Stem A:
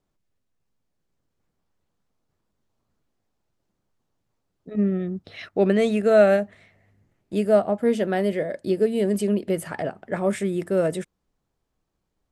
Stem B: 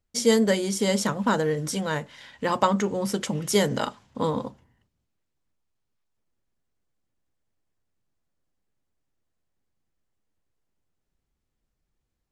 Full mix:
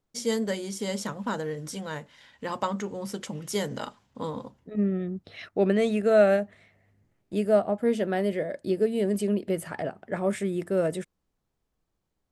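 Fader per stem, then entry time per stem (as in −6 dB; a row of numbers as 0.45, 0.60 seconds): −3.5, −7.5 decibels; 0.00, 0.00 seconds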